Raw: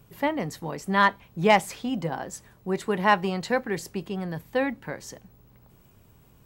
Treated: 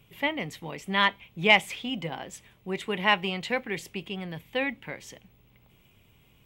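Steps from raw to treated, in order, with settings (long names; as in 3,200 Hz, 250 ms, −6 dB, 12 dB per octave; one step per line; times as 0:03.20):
flat-topped bell 2,700 Hz +12.5 dB 1 octave
level −5 dB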